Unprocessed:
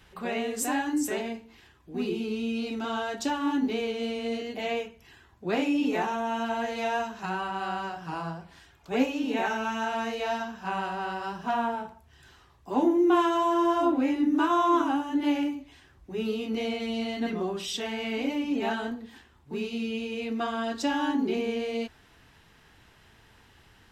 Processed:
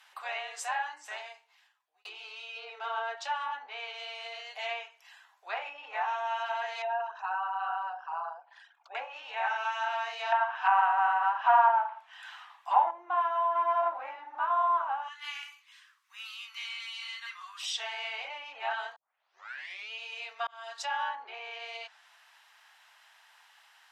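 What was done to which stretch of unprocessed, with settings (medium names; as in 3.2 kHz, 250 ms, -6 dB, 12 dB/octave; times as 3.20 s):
0.83–2.05 s: fade out
2.56–3.15 s: peaking EQ 430 Hz +13.5 dB 0.37 oct
6.82–8.95 s: resonances exaggerated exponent 2
10.32–12.91 s: high-order bell 1.6 kHz +11 dB 2.6 oct
13.55–14.39 s: waveshaping leveller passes 1
15.08–17.63 s: elliptic high-pass 1.1 kHz, stop band 50 dB
18.96 s: tape start 0.95 s
20.47–20.91 s: fade in
whole clip: low-pass that closes with the level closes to 1.3 kHz, closed at -21 dBFS; steep high-pass 720 Hz 36 dB/octave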